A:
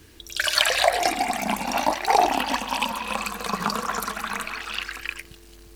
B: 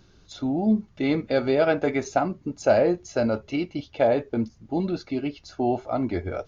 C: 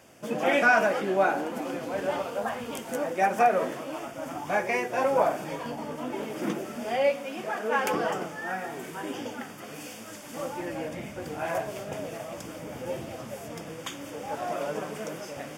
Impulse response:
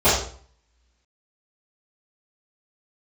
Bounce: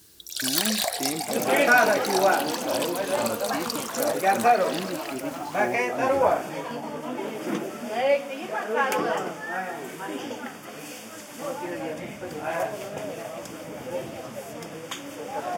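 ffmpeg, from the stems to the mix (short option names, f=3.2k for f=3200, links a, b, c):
-filter_complex "[0:a]aexciter=amount=3.8:drive=4.9:freq=3.6k,aeval=exprs='(mod(1.33*val(0)+1,2)-1)/1.33':c=same,volume=-10dB[a];[1:a]alimiter=limit=-15.5dB:level=0:latency=1,volume=-6dB[b];[2:a]adelay=1050,volume=2.5dB[c];[a][b][c]amix=inputs=3:normalize=0,highpass=f=150:p=1"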